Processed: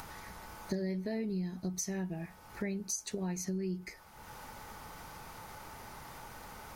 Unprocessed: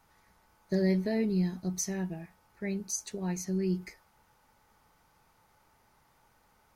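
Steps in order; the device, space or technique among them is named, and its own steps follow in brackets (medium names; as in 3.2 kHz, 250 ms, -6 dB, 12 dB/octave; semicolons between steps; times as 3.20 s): upward and downward compression (upward compressor, threshold -48 dBFS; compression 6:1, threshold -44 dBFS, peak gain reduction 19 dB); trim +9.5 dB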